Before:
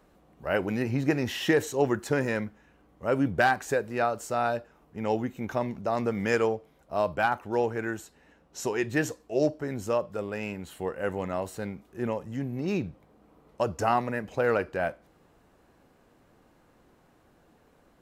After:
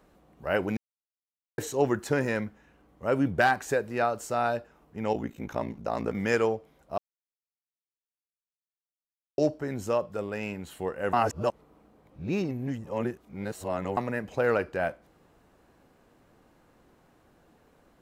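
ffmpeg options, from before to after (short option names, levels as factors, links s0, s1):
-filter_complex "[0:a]asplit=3[s0][s1][s2];[s0]afade=t=out:st=5.13:d=0.02[s3];[s1]aeval=exprs='val(0)*sin(2*PI*28*n/s)':c=same,afade=t=in:st=5.13:d=0.02,afade=t=out:st=6.13:d=0.02[s4];[s2]afade=t=in:st=6.13:d=0.02[s5];[s3][s4][s5]amix=inputs=3:normalize=0,asplit=7[s6][s7][s8][s9][s10][s11][s12];[s6]atrim=end=0.77,asetpts=PTS-STARTPTS,afade=t=out:st=0.766:d=0.004:c=hsin[s13];[s7]atrim=start=0.77:end=1.58,asetpts=PTS-STARTPTS,volume=0[s14];[s8]atrim=start=1.58:end=6.98,asetpts=PTS-STARTPTS,afade=t=in:d=0.004:c=hsin,afade=t=out:st=5.396:d=0.004:c=hsin[s15];[s9]atrim=start=6.98:end=9.38,asetpts=PTS-STARTPTS,volume=0[s16];[s10]atrim=start=9.38:end=11.132,asetpts=PTS-STARTPTS,afade=t=in:d=0.004:c=hsin[s17];[s11]atrim=start=11.128:end=13.972,asetpts=PTS-STARTPTS,areverse[s18];[s12]atrim=start=13.968[s19];[s13][s14][s15][s16][s17]concat=n=5:v=0:a=1[s20];[s20][s18]acrossfade=d=0.004:c1=hsin:c2=hsin[s21];[s21][s19]acrossfade=d=0.004:c1=hsin:c2=hsin"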